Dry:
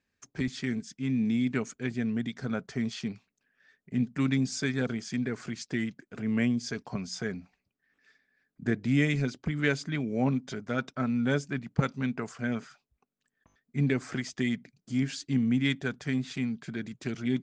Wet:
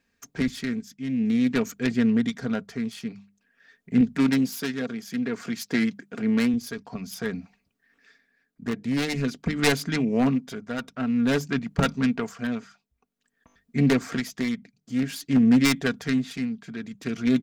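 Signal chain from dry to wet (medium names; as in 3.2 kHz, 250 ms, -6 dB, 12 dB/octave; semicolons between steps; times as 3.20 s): self-modulated delay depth 0.28 ms; 4.01–6.54 s: high-pass 140 Hz 12 dB/octave; hum notches 50/100/150/200 Hz; comb 4.3 ms, depth 35%; wavefolder -18.5 dBFS; tremolo 0.51 Hz, depth 61%; trim +7.5 dB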